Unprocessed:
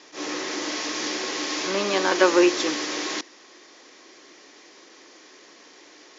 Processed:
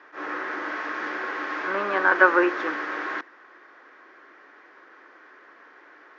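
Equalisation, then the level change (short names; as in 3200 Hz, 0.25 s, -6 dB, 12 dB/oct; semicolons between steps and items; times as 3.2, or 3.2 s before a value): HPF 390 Hz 6 dB/oct; synth low-pass 1500 Hz, resonance Q 3.8; -2.0 dB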